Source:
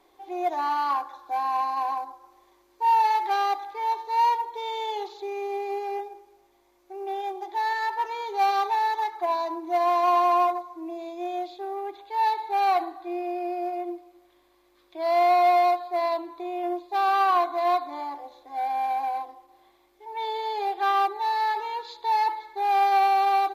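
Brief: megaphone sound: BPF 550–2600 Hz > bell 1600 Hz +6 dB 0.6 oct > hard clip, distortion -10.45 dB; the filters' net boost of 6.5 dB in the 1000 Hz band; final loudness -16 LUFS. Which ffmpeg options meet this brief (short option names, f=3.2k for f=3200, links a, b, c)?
-af "highpass=550,lowpass=2.6k,equalizer=f=1k:t=o:g=8.5,equalizer=f=1.6k:t=o:w=0.6:g=6,asoftclip=type=hard:threshold=-16dB,volume=5.5dB"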